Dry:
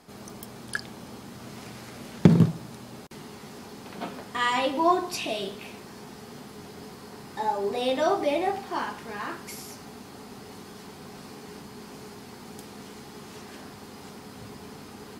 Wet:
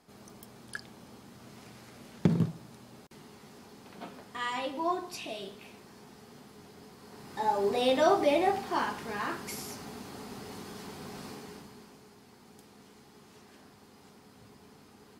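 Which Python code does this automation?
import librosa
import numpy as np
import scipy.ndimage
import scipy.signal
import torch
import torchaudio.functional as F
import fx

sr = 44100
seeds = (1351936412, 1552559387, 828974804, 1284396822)

y = fx.gain(x, sr, db=fx.line((6.95, -9.0), (7.58, 0.0), (11.29, 0.0), (12.02, -12.5)))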